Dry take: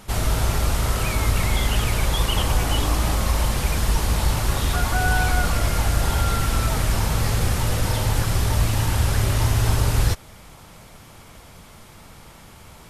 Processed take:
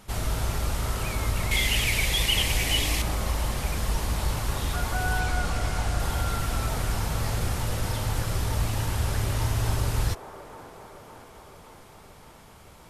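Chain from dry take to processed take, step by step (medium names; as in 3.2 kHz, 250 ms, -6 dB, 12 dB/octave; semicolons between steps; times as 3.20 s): 1.51–3.02 s: resonant high shelf 1.7 kHz +7 dB, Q 3; 5.20–6.00 s: low-pass 10 kHz 12 dB/octave; on a send: feedback echo behind a band-pass 567 ms, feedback 66%, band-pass 660 Hz, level -8 dB; on the sum: trim -6.5 dB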